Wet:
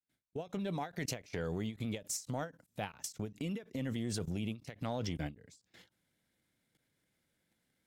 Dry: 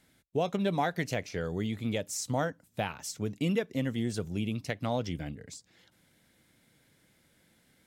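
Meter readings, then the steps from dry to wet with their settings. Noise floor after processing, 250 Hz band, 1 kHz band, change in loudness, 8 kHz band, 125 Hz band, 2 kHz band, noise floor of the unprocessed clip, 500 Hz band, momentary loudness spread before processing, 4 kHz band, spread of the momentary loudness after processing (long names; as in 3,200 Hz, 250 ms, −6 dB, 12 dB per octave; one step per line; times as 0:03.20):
−81 dBFS, −6.5 dB, −9.0 dB, −7.0 dB, −3.0 dB, −5.5 dB, −8.5 dB, −68 dBFS, −9.0 dB, 7 LU, −5.5 dB, 6 LU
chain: fade in at the beginning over 0.77 s
transient designer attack −6 dB, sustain −2 dB
output level in coarse steps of 22 dB
every ending faded ahead of time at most 240 dB per second
level +7.5 dB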